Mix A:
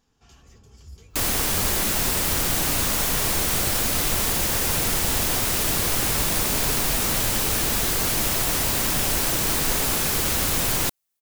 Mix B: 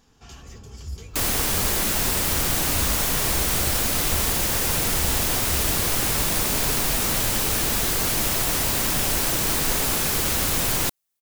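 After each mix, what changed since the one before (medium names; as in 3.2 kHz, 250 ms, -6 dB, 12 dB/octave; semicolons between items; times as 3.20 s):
first sound +9.5 dB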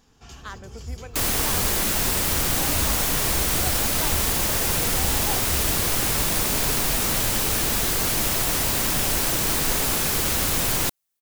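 speech: unmuted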